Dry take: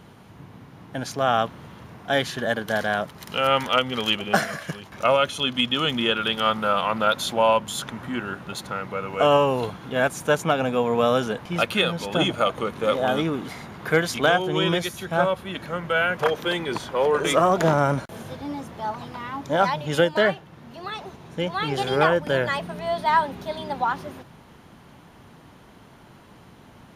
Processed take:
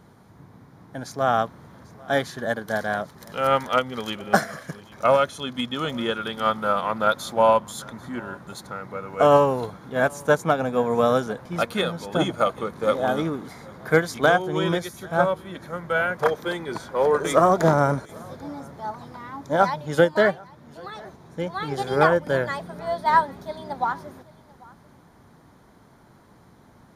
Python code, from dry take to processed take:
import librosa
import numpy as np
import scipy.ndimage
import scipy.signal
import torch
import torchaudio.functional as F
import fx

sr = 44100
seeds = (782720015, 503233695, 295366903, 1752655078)

y = fx.peak_eq(x, sr, hz=2800.0, db=-13.0, octaves=0.46)
y = y + 10.0 ** (-20.5 / 20.0) * np.pad(y, (int(792 * sr / 1000.0), 0))[:len(y)]
y = fx.upward_expand(y, sr, threshold_db=-29.0, expansion=1.5)
y = y * 10.0 ** (3.0 / 20.0)